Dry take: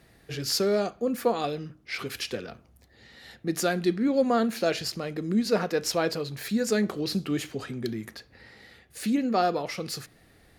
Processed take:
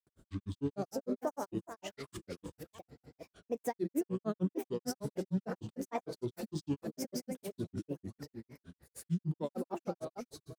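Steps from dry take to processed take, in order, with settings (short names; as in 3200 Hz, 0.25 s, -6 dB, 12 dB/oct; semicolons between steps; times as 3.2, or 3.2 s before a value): reverse delay 0.464 s, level -12 dB; bell 2800 Hz -14.5 dB 2.2 oct; limiter -23 dBFS, peak gain reduction 9 dB; on a send: echo 0.433 s -8.5 dB; on the sum: grains, grains 6.6/s, pitch spread up and down by 7 st; gain -1 dB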